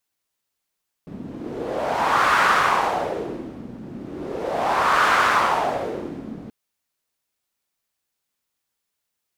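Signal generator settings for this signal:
wind from filtered noise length 5.43 s, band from 220 Hz, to 1,300 Hz, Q 2.7, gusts 2, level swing 18.5 dB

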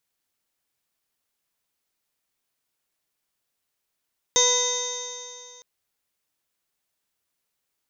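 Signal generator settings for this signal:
stiff-string partials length 1.26 s, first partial 491 Hz, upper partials −3/−18/−7/−18/−16/2.5/−16/−11/−3.5/5/−7 dB, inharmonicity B 0.003, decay 2.43 s, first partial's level −23 dB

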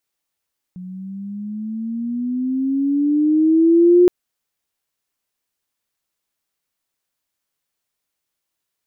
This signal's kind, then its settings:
pitch glide with a swell sine, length 3.32 s, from 180 Hz, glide +12 semitones, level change +23 dB, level −7 dB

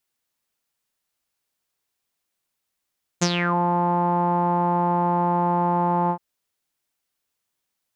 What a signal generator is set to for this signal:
subtractive voice saw F3 12 dB per octave, low-pass 920 Hz, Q 9.3, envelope 3 octaves, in 0.33 s, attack 16 ms, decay 0.06 s, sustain −7 dB, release 0.08 s, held 2.89 s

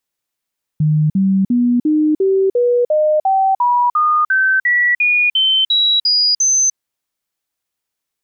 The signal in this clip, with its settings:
stepped sweep 153 Hz up, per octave 3, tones 17, 0.30 s, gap 0.05 s −10.5 dBFS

